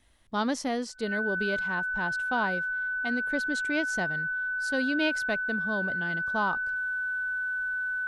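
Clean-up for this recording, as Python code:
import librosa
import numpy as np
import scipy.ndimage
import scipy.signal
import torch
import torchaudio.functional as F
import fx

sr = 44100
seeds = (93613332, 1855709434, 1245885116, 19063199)

y = fx.notch(x, sr, hz=1500.0, q=30.0)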